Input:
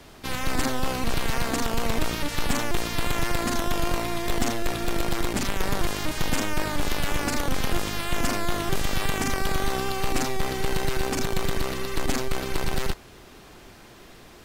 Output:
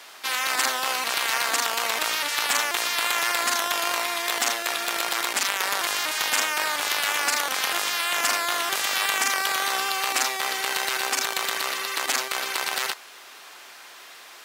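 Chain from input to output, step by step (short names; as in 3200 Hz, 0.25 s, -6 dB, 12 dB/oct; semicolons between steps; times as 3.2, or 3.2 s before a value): HPF 990 Hz 12 dB/oct; gain +7.5 dB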